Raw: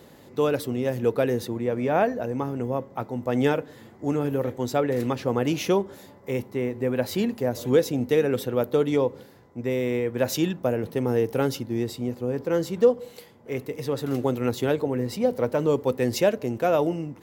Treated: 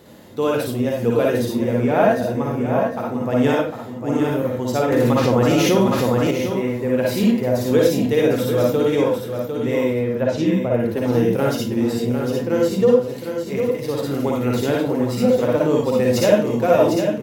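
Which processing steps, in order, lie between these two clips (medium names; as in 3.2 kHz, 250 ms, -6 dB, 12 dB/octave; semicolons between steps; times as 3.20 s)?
9.84–10.74 s: tape spacing loss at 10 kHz 22 dB; feedback delay 752 ms, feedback 24%, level -7 dB; reverberation RT60 0.35 s, pre-delay 51 ms, DRR -2 dB; 4.92–6.31 s: level flattener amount 70%; trim +1 dB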